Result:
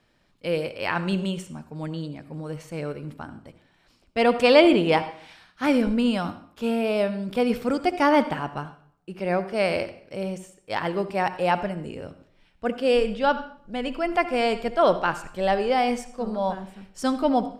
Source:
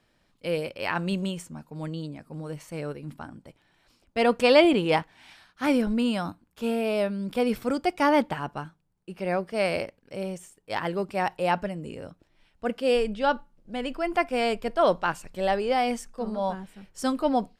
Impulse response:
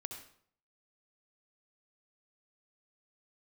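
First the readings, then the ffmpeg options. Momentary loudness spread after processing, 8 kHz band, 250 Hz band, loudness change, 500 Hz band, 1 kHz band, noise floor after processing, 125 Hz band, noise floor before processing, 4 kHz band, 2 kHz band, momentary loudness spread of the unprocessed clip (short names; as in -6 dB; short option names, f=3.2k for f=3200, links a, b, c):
15 LU, n/a, +2.5 dB, +2.5 dB, +2.5 dB, +2.5 dB, -63 dBFS, +2.5 dB, -68 dBFS, +2.0 dB, +2.5 dB, 15 LU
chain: -filter_complex "[0:a]asplit=2[a][b];[1:a]atrim=start_sample=2205,lowpass=8.2k[c];[b][c]afir=irnorm=-1:irlink=0,volume=-1.5dB[d];[a][d]amix=inputs=2:normalize=0,volume=-1.5dB"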